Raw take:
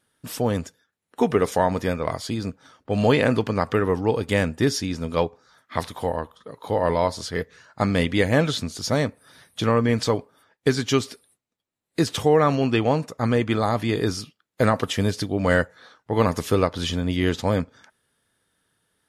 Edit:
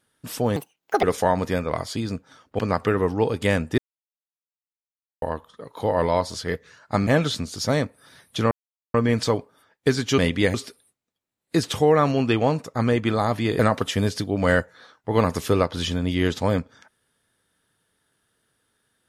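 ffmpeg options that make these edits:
-filter_complex "[0:a]asplit=11[a][b][c][d][e][f][g][h][i][j][k];[a]atrim=end=0.564[l];[b]atrim=start=0.56:end=1.37,asetpts=PTS-STARTPTS,asetrate=75852,aresample=44100,atrim=end_sample=20768,asetpts=PTS-STARTPTS[m];[c]atrim=start=1.366:end=2.932[n];[d]atrim=start=3.458:end=4.65,asetpts=PTS-STARTPTS,afade=t=out:st=1.188:d=0.004:c=hsin[o];[e]atrim=start=4.65:end=6.09,asetpts=PTS-STARTPTS,volume=0[p];[f]atrim=start=6.09:end=7.942,asetpts=PTS-STARTPTS,afade=t=in:d=0.004:c=hsin[q];[g]atrim=start=8.298:end=9.74,asetpts=PTS-STARTPTS,afade=t=out:st=1.438:d=0.004:c=hsin,apad=pad_dur=0.43[r];[h]atrim=start=9.74:end=10.982,asetpts=PTS-STARTPTS,afade=t=in:d=0.004:c=hsin[s];[i]atrim=start=7.938:end=8.302[t];[j]atrim=start=10.978:end=14.032[u];[k]atrim=start=14.608[v];[l][m]acrossfade=d=0.004:c1=hsin:c2=hsin[w];[w][n]acrossfade=d=0.004:c1=hsin:c2=hsin[x];[o][p][q]concat=n=3:v=0:a=1[y];[x][y]acrossfade=d=0.004:c1=hsin:c2=hsin[z];[r][s]concat=n=2:v=0:a=1[aa];[z][aa]acrossfade=d=0.004:c1=hsin:c2=hsin[ab];[ab][t]acrossfade=d=0.004:c1=hsin:c2=hsin[ac];[ac][u]acrossfade=d=0.004:c1=hsin:c2=hsin[ad];[ad][v]acrossfade=d=0.004:c1=hsin:c2=hsin"

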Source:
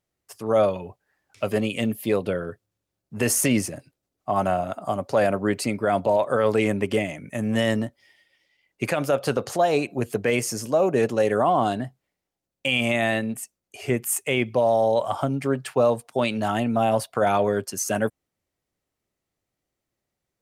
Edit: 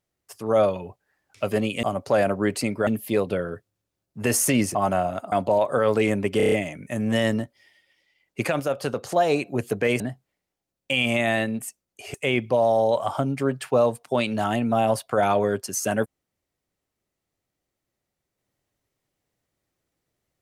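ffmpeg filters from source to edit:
-filter_complex "[0:a]asplit=14[a][b][c][d][e][f][g][h][i][j][k][l][m][n];[a]atrim=end=1.832[o];[b]atrim=start=4.858:end=5.902[p];[c]atrim=start=1.828:end=3.712[q];[d]atrim=start=4.288:end=4.862[r];[e]atrim=start=5.898:end=6.982[s];[f]atrim=start=6.948:end=6.982[t];[g]atrim=start=6.948:end=6.982[u];[h]atrim=start=6.948:end=6.982[v];[i]atrim=start=6.948:end=6.982[w];[j]atrim=start=6.948:end=9.032[x];[k]atrim=start=9.028:end=9.552,asetpts=PTS-STARTPTS,volume=-3.5dB[y];[l]atrim=start=9.548:end=10.432[z];[m]atrim=start=11.748:end=13.892[aa];[n]atrim=start=14.178[ab];[o][p]acrossfade=d=0.004:c1=hsin:c2=hsin[ac];[ac][q]acrossfade=d=0.004:c1=hsin:c2=hsin[ad];[ad][r]acrossfade=d=0.004:c1=hsin:c2=hsin[ae];[ae][s]acrossfade=d=0.004:c1=hsin:c2=hsin[af];[af][t]acrossfade=d=0.004:c1=hsin:c2=hsin[ag];[ag][u]acrossfade=d=0.004:c1=hsin:c2=hsin[ah];[ah][v]acrossfade=d=0.004:c1=hsin:c2=hsin[ai];[ai][w]acrossfade=d=0.004:c1=hsin:c2=hsin[aj];[aj][x]acrossfade=d=0.004:c1=hsin:c2=hsin[ak];[ak][y]acrossfade=d=0.004:c1=hsin:c2=hsin[al];[al][z]acrossfade=d=0.004:c1=hsin:c2=hsin[am];[am][aa]acrossfade=d=0.004:c1=hsin:c2=hsin[an];[an][ab]acrossfade=d=0.004:c1=hsin:c2=hsin"

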